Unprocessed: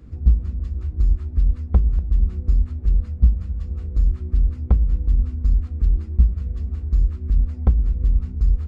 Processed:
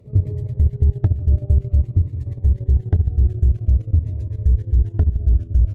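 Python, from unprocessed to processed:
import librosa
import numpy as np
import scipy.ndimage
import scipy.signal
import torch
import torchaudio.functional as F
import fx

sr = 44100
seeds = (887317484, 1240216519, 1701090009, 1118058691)

y = fx.speed_glide(x, sr, from_pct=171, to_pct=131)
y = fx.low_shelf(y, sr, hz=120.0, db=5.5)
y = fx.small_body(y, sr, hz=(420.0, 600.0), ring_ms=90, db=13)
y = fx.level_steps(y, sr, step_db=12)
y = fx.notch_cascade(y, sr, direction='falling', hz=0.5)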